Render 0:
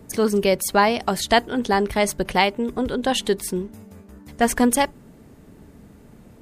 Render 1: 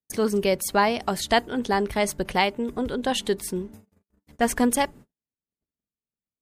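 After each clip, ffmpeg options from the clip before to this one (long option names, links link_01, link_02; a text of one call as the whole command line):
ffmpeg -i in.wav -af "agate=range=-50dB:threshold=-39dB:ratio=16:detection=peak,volume=-3.5dB" out.wav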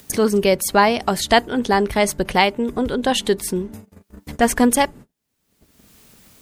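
ffmpeg -i in.wav -af "acompressor=mode=upward:threshold=-26dB:ratio=2.5,volume=6dB" out.wav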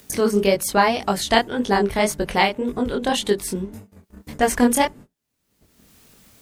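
ffmpeg -i in.wav -af "flanger=delay=19.5:depth=6.8:speed=1.8,volume=1dB" out.wav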